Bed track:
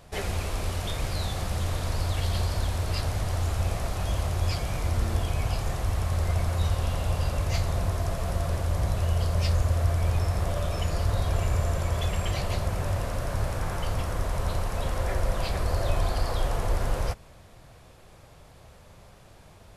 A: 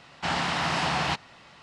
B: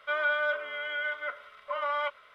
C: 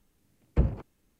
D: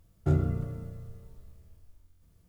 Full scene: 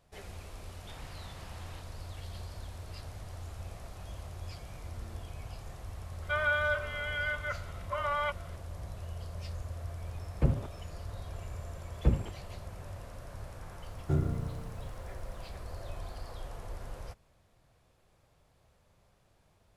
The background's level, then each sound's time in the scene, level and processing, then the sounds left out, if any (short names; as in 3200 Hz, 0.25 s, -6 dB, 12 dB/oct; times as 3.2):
bed track -16 dB
0.66 add A -15.5 dB + compressor, threshold -35 dBFS
6.22 add B -1.5 dB
9.85 add C -1.5 dB + comb 7.4 ms, depth 35%
11.48 add C -2 dB
13.83 add D -4 dB